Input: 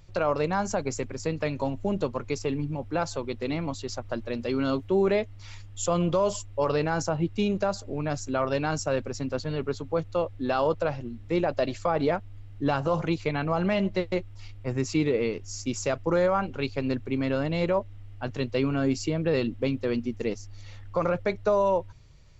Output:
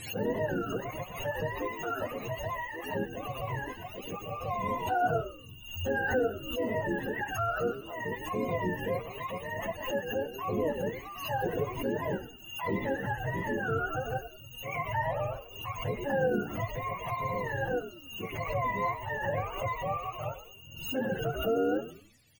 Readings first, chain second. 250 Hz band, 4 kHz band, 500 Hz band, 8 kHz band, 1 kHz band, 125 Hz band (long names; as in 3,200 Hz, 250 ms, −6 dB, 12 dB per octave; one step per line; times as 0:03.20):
−8.5 dB, −4.0 dB, −6.0 dB, can't be measured, −1.5 dB, −6.0 dB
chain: frequency axis turned over on the octave scale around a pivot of 530 Hz
on a send: echo with shifted repeats 96 ms, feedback 36%, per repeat −70 Hz, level −12 dB
on the sum: flanger 0.72 Hz, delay 2.6 ms, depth 5.9 ms, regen +79%
background raised ahead of every attack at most 75 dB per second